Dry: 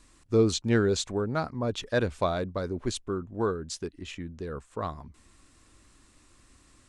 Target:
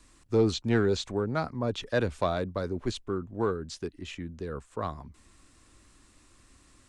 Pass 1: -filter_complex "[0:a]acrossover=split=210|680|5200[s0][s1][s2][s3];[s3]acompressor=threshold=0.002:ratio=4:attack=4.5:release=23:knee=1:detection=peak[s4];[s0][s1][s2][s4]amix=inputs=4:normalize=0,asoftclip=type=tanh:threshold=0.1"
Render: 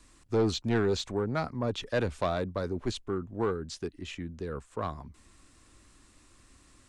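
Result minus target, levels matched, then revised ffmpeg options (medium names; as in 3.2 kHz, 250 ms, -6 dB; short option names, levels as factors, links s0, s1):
saturation: distortion +8 dB
-filter_complex "[0:a]acrossover=split=210|680|5200[s0][s1][s2][s3];[s3]acompressor=threshold=0.002:ratio=4:attack=4.5:release=23:knee=1:detection=peak[s4];[s0][s1][s2][s4]amix=inputs=4:normalize=0,asoftclip=type=tanh:threshold=0.211"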